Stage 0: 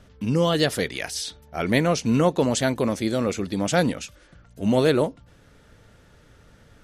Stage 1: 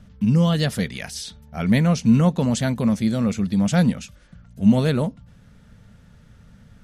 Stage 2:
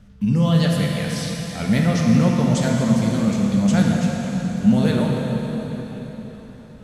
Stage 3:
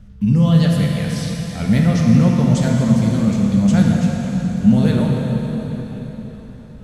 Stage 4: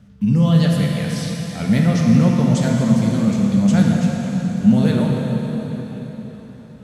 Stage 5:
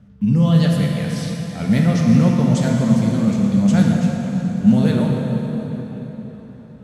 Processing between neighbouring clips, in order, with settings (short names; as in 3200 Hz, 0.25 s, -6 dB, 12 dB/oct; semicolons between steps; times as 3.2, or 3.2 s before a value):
resonant low shelf 260 Hz +6.5 dB, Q 3; gain -2.5 dB
plate-style reverb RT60 4.6 s, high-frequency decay 0.9×, DRR -2 dB; gain -2 dB
low shelf 170 Hz +10 dB; gain -1 dB
HPF 120 Hz 12 dB/oct
mismatched tape noise reduction decoder only